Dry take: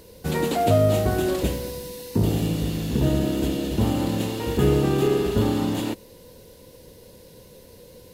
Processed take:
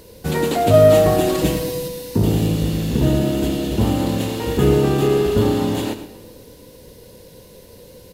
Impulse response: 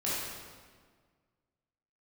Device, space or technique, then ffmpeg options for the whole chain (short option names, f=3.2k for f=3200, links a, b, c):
saturated reverb return: -filter_complex "[0:a]asettb=1/sr,asplit=3[a][b][c];[a]atrim=end=0.734[d];[b]atrim=start=0.73:end=1.88,asetpts=PTS-STARTPTS,afade=t=in:d=0.004:c=qsin,afade=t=out:st=1.146:d=0.004:c=qsin,aecho=1:1:6.4:0.98,atrim=end_sample=50715[e];[c]atrim=start=1.876[f];[d][e]acrossfade=d=0.004:c1=hsin:c2=qsin[g];[g][f]acrossfade=d=0.004:c1=qsin:c2=hsin,aecho=1:1:111:0.237,asplit=2[h][i];[1:a]atrim=start_sample=2205[j];[i][j]afir=irnorm=-1:irlink=0,asoftclip=type=tanh:threshold=-4.5dB,volume=-19dB[k];[h][k]amix=inputs=2:normalize=0,volume=3dB"